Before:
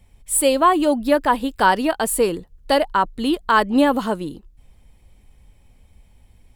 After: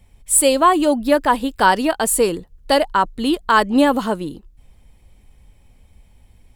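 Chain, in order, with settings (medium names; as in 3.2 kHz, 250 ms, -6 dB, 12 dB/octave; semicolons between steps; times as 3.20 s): dynamic bell 6.9 kHz, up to +6 dB, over -39 dBFS, Q 1.1; trim +1.5 dB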